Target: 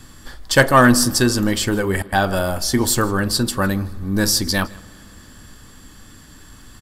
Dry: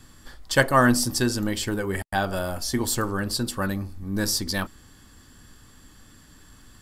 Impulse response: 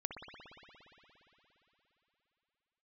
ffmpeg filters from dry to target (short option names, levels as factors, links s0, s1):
-filter_complex "[0:a]aecho=1:1:159:0.0668,asplit=2[s0][s1];[1:a]atrim=start_sample=2205,adelay=43[s2];[s1][s2]afir=irnorm=-1:irlink=0,volume=0.0891[s3];[s0][s3]amix=inputs=2:normalize=0,asoftclip=type=tanh:threshold=0.398,volume=2.37"